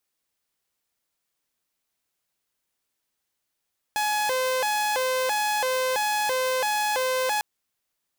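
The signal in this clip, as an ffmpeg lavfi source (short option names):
-f lavfi -i "aevalsrc='0.1*(2*mod((679*t+164/1.5*(0.5-abs(mod(1.5*t,1)-0.5))),1)-1)':d=3.45:s=44100"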